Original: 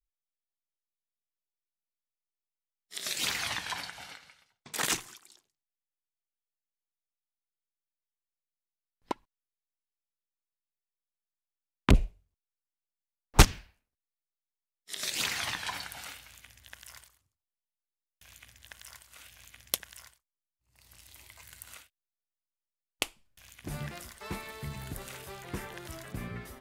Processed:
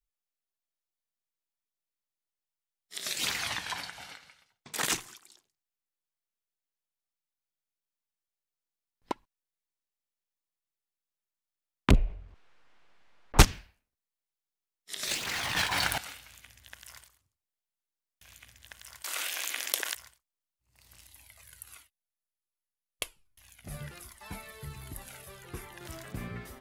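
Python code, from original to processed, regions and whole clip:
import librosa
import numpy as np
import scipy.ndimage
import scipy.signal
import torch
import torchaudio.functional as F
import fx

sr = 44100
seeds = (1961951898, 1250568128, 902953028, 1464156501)

y = fx.chain(x, sr, fx.lowpass(hz=2200.0, slope=12),
    fx.peak_eq(hz=150.0, db=-5.5, octaves=2.8),
    fx.env_flatten(amount_pct=50), at=(11.95, 13.38))
y = fx.chain(y, sr, fx.leveller(passes=3),
    fx.over_compress(threshold_db=-30.0, ratio=-1.0),
    fx.backlash(play_db=-31.5), at=(15.07, 15.98))
y = fx.chain(y, sr, fx.steep_highpass(hz=310.0, slope=36),
    fx.env_flatten(amount_pct=70), at=(19.04, 19.95))
y = fx.chain(y, sr, fx.peak_eq(hz=11000.0, db=10.5, octaves=0.23),
    fx.comb_cascade(direction='falling', hz=1.3), at=(21.07, 25.81))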